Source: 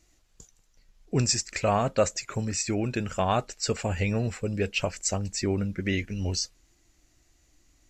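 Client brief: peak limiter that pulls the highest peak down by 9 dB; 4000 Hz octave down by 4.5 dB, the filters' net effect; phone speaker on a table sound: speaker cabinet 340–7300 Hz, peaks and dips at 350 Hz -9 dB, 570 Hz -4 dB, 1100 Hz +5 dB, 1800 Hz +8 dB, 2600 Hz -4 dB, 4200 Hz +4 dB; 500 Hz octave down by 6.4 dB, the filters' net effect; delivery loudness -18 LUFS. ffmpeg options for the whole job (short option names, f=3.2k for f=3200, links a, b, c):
-af "equalizer=f=500:t=o:g=-3.5,equalizer=f=4k:t=o:g=-8,alimiter=limit=-23.5dB:level=0:latency=1,highpass=f=340:w=0.5412,highpass=f=340:w=1.3066,equalizer=f=350:t=q:w=4:g=-9,equalizer=f=570:t=q:w=4:g=-4,equalizer=f=1.1k:t=q:w=4:g=5,equalizer=f=1.8k:t=q:w=4:g=8,equalizer=f=2.6k:t=q:w=4:g=-4,equalizer=f=4.2k:t=q:w=4:g=4,lowpass=f=7.3k:w=0.5412,lowpass=f=7.3k:w=1.3066,volume=19dB"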